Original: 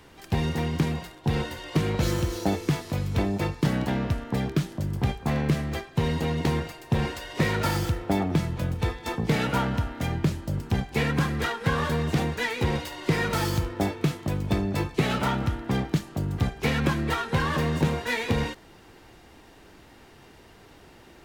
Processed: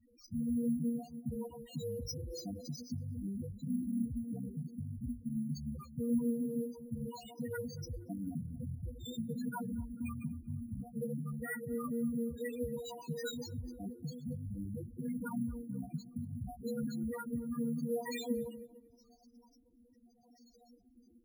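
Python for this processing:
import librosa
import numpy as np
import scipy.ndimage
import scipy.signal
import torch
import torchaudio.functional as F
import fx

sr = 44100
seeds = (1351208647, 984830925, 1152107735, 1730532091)

p1 = fx.reverse_delay(x, sr, ms=149, wet_db=-11.0)
p2 = fx.band_shelf(p1, sr, hz=6500.0, db=12.5, octaves=1.7)
p3 = fx.over_compress(p2, sr, threshold_db=-26.0, ratio=-0.5)
p4 = p2 + (p3 * librosa.db_to_amplitude(-1.5))
p5 = fx.comb_fb(p4, sr, f0_hz=240.0, decay_s=0.21, harmonics='all', damping=0.0, mix_pct=90)
p6 = fx.rotary_switch(p5, sr, hz=7.5, then_hz=0.8, switch_at_s=14.77)
p7 = fx.spec_topn(p6, sr, count=4)
p8 = fx.notch_comb(p7, sr, f0_hz=420.0)
p9 = p8 + fx.echo_tape(p8, sr, ms=233, feedback_pct=59, wet_db=-21, lp_hz=1200.0, drive_db=24.0, wow_cents=15, dry=0)
y = np.repeat(p9[::4], 4)[:len(p9)]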